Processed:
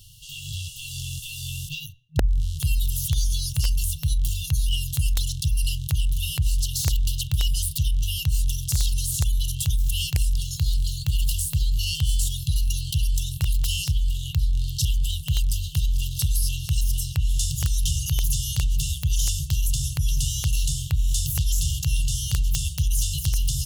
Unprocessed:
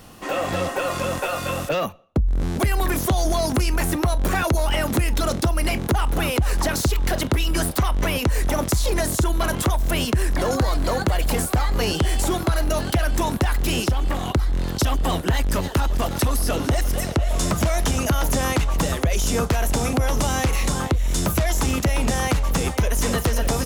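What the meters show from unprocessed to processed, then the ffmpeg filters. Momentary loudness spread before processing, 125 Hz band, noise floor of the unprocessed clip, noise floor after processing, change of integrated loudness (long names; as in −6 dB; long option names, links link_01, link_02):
2 LU, −1.0 dB, −29 dBFS, −37 dBFS, −3.0 dB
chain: -af "bandreject=frequency=60:width_type=h:width=6,bandreject=frequency=120:width_type=h:width=6,afftfilt=real='re*(1-between(b*sr/4096,160,2700))':imag='im*(1-between(b*sr/4096,160,2700))':win_size=4096:overlap=0.75,aeval=exprs='(mod(4.22*val(0)+1,2)-1)/4.22':channel_layout=same"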